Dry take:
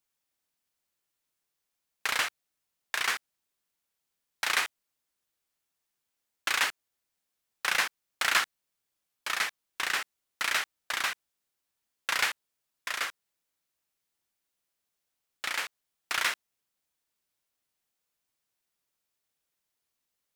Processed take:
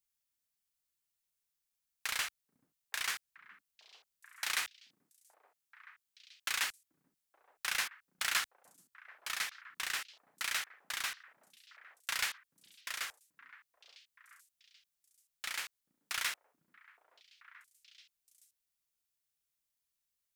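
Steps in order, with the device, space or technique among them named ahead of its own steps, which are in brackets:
smiley-face EQ (low-shelf EQ 120 Hz +6.5 dB; parametric band 420 Hz −7 dB 2.7 octaves; high-shelf EQ 5,100 Hz +6 dB)
0:04.64–0:06.53: high-pass filter 99 Hz
echo through a band-pass that steps 434 ms, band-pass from 210 Hz, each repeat 1.4 octaves, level −11 dB
level −7.5 dB

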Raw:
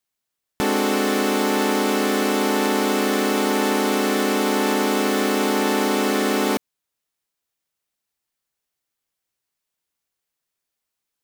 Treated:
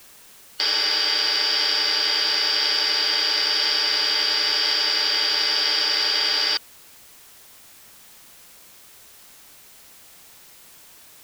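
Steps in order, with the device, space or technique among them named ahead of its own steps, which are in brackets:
split-band scrambled radio (band-splitting scrambler in four parts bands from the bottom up 4321; band-pass filter 350–3,200 Hz; white noise bed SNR 24 dB)
level +6 dB

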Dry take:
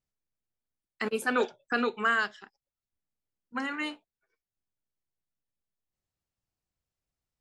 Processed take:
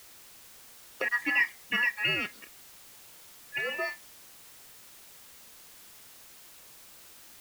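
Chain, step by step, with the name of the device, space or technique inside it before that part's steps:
split-band scrambled radio (band-splitting scrambler in four parts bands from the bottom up 2143; band-pass filter 370–3,000 Hz; white noise bed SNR 16 dB)
level +2 dB

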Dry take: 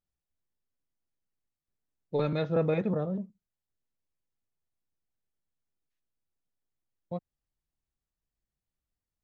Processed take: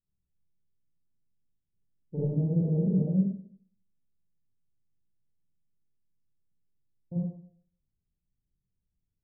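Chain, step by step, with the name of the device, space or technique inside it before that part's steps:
Butterworth low-pass 1,000 Hz 48 dB per octave
television next door (downward compressor 5 to 1, threshold −29 dBFS, peak gain reduction 7 dB; low-pass filter 270 Hz 12 dB per octave; convolution reverb RT60 0.55 s, pre-delay 35 ms, DRR −6.5 dB)

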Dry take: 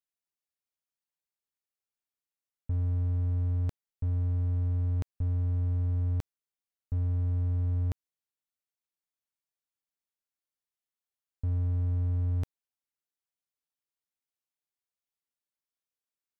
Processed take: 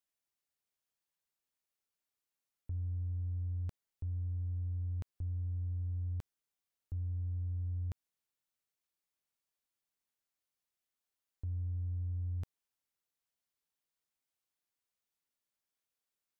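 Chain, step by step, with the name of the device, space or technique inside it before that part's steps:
soft clipper into limiter (soft clipping −27.5 dBFS, distortion −16 dB; brickwall limiter −35.5 dBFS, peak gain reduction 7.5 dB)
level +2 dB

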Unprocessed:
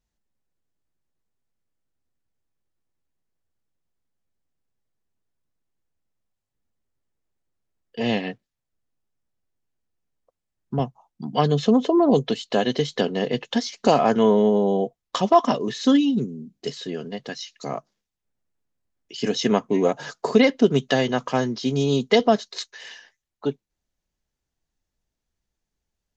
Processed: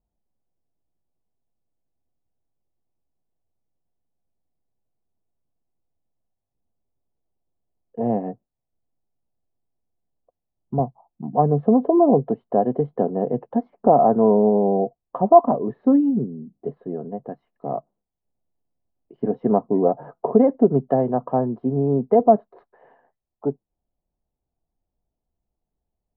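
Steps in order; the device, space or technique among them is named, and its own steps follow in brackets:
under water (low-pass filter 930 Hz 24 dB per octave; parametric band 710 Hz +5.5 dB 0.3 octaves)
level +1 dB

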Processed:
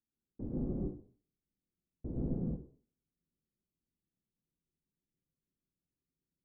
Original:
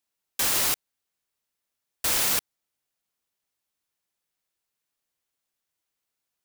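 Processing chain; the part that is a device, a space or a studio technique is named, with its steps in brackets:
next room (low-pass filter 320 Hz 24 dB per octave; convolution reverb RT60 0.45 s, pre-delay 109 ms, DRR −5.5 dB)
level +2.5 dB

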